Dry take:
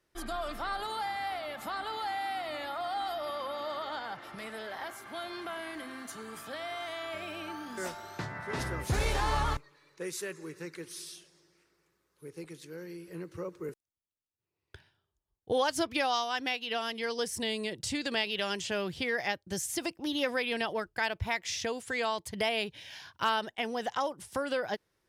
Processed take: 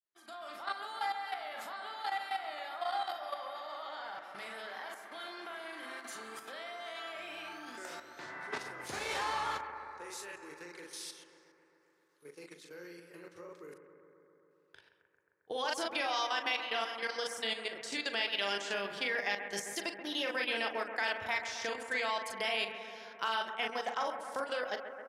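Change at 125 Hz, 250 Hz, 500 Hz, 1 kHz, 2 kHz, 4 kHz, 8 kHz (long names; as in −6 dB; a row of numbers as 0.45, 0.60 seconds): −20.0, −9.5, −5.5, −3.0, −1.0, −1.5, −5.5 decibels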